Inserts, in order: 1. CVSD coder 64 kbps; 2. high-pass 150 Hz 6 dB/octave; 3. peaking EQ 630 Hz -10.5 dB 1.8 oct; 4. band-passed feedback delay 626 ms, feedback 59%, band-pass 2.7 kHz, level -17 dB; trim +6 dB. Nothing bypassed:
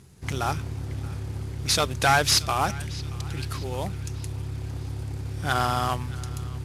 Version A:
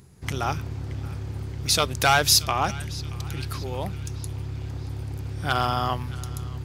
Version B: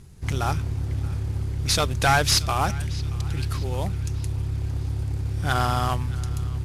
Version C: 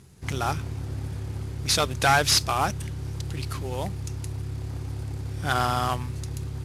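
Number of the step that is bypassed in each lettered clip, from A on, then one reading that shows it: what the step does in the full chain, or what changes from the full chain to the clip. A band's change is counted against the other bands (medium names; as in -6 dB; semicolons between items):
1, 8 kHz band +2.5 dB; 2, 125 Hz band +5.0 dB; 4, echo-to-direct -18.0 dB to none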